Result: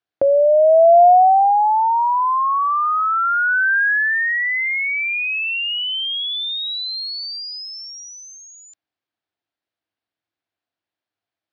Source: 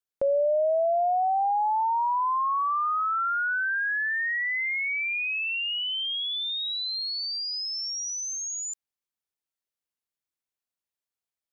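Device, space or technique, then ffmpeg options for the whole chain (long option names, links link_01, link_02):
guitar cabinet: -af "highpass=80,equalizer=frequency=100:width_type=q:width=4:gain=9,equalizer=frequency=310:width_type=q:width=4:gain=9,equalizer=frequency=700:width_type=q:width=4:gain=8,equalizer=frequency=1600:width_type=q:width=4:gain=4,lowpass=frequency=4400:width=0.5412,lowpass=frequency=4400:width=1.3066,volume=6.5dB"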